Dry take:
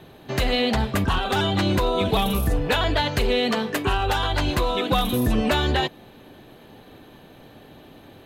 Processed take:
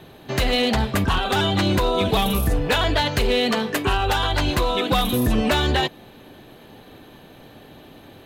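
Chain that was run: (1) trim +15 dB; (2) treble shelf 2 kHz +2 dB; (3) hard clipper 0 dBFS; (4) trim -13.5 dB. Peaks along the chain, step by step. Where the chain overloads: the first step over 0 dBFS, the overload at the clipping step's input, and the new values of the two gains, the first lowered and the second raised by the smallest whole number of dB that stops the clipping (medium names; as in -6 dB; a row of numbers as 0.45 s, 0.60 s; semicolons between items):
+3.0 dBFS, +4.0 dBFS, 0.0 dBFS, -13.5 dBFS; step 1, 4.0 dB; step 1 +11 dB, step 4 -9.5 dB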